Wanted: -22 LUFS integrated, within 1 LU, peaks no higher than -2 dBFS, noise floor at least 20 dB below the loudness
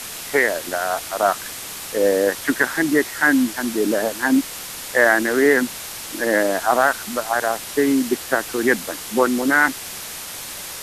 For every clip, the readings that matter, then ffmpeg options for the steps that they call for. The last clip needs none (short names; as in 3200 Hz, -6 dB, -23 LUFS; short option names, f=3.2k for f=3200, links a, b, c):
noise floor -33 dBFS; noise floor target -40 dBFS; loudness -20.0 LUFS; peak -2.5 dBFS; loudness target -22.0 LUFS
-> -af "afftdn=nr=7:nf=-33"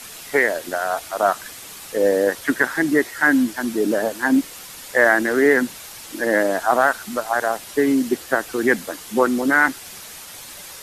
noise floor -38 dBFS; noise floor target -40 dBFS
-> -af "afftdn=nr=6:nf=-38"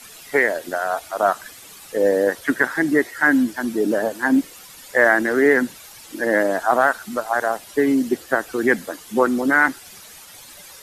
noise floor -43 dBFS; loudness -20.0 LUFS; peak -2.5 dBFS; loudness target -22.0 LUFS
-> -af "volume=-2dB"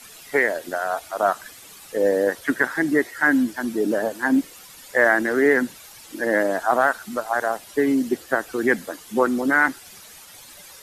loudness -22.0 LUFS; peak -4.5 dBFS; noise floor -45 dBFS